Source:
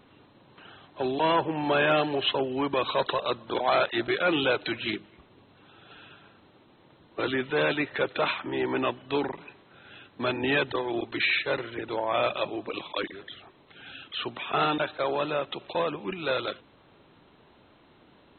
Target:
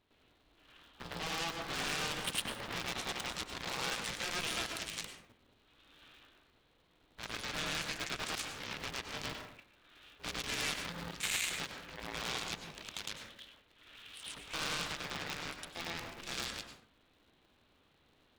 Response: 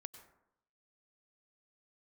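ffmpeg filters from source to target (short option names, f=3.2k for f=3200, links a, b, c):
-filter_complex "[0:a]aeval=exprs='0.237*(cos(1*acos(clip(val(0)/0.237,-1,1)))-cos(1*PI/2))+0.0531*(cos(7*acos(clip(val(0)/0.237,-1,1)))-cos(7*PI/2))':c=same,asplit=2[a][b];[1:a]atrim=start_sample=2205,afade=t=out:st=0.31:d=0.01,atrim=end_sample=14112,adelay=108[c];[b][c]afir=irnorm=-1:irlink=0,volume=12dB[d];[a][d]amix=inputs=2:normalize=0,alimiter=limit=-13dB:level=0:latency=1:release=58,equalizer=f=530:w=0.32:g=-14,aeval=exprs='val(0)*sgn(sin(2*PI*170*n/s))':c=same,volume=-6dB"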